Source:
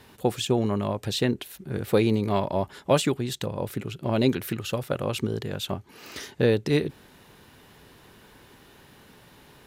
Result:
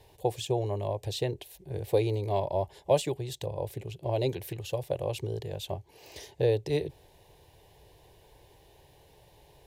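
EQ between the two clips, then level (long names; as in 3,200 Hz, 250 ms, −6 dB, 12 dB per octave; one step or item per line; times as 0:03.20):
low-shelf EQ 170 Hz +9.5 dB
parametric band 850 Hz +6 dB 1.7 octaves
phaser with its sweep stopped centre 550 Hz, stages 4
−6.5 dB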